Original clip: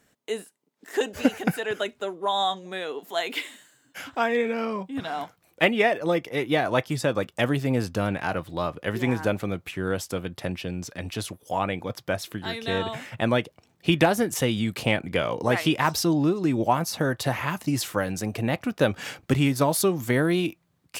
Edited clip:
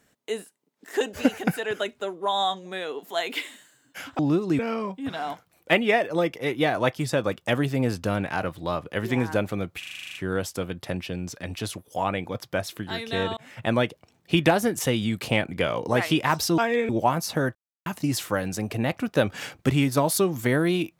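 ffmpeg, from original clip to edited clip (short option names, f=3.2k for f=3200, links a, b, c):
-filter_complex "[0:a]asplit=17[a][b][c][d][e][f][g][h][i][j][k][l][m][n][o][p][q];[a]atrim=end=4.192[r];[b]atrim=start=16.128:end=16.532[s];[c]atrim=start=4.498:end=9.742[t];[d]atrim=start=9.698:end=9.742[u];[e]atrim=start=9.698:end=9.742[v];[f]atrim=start=9.698:end=9.742[w];[g]atrim=start=9.698:end=9.742[x];[h]atrim=start=9.698:end=9.742[y];[i]atrim=start=9.698:end=9.742[z];[j]atrim=start=9.698:end=9.742[aa];[k]atrim=start=9.698:end=9.742[ab];[l]atrim=start=9.698:end=12.92,asetpts=PTS-STARTPTS,afade=t=out:st=3.218:d=0.004:c=hsin[ac];[m]atrim=start=12.92:end=16.132,asetpts=PTS-STARTPTS,afade=t=in:d=0.26[ad];[n]atrim=start=4.188:end=4.502[ae];[o]atrim=start=16.528:end=17.19,asetpts=PTS-STARTPTS,afade=t=out:st=0.658:d=0.004:c=hsin[af];[p]atrim=start=17.19:end=17.5,asetpts=PTS-STARTPTS,volume=0[ag];[q]atrim=start=17.5,asetpts=PTS-STARTPTS,afade=t=in:d=0.004:c=hsin[ah];[r][s]acrossfade=d=0.004:c1=hsin:c2=hsin[ai];[ai][t]acrossfade=d=0.004:c1=hsin:c2=hsin[aj];[aj][u]acrossfade=d=0.004:c1=hsin:c2=hsin[ak];[ak][v]acrossfade=d=0.004:c1=hsin:c2=hsin[al];[al][w]acrossfade=d=0.004:c1=hsin:c2=hsin[am];[am][x]acrossfade=d=0.004:c1=hsin:c2=hsin[an];[an][y]acrossfade=d=0.004:c1=hsin:c2=hsin[ao];[ao][z]acrossfade=d=0.004:c1=hsin:c2=hsin[ap];[ap][aa]acrossfade=d=0.004:c1=hsin:c2=hsin[aq];[aq][ab]acrossfade=d=0.004:c1=hsin:c2=hsin[ar];[ac][ad]concat=n=2:v=0:a=1[as];[ar][as]acrossfade=d=0.004:c1=hsin:c2=hsin[at];[at][ae]acrossfade=d=0.004:c1=hsin:c2=hsin[au];[af][ag][ah]concat=n=3:v=0:a=1[av];[au][av]acrossfade=d=0.004:c1=hsin:c2=hsin"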